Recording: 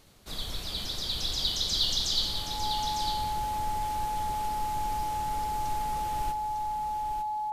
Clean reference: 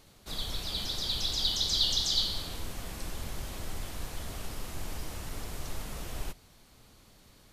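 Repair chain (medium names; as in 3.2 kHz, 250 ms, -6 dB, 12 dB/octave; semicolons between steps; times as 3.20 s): clip repair -17 dBFS; band-stop 850 Hz, Q 30; inverse comb 902 ms -7.5 dB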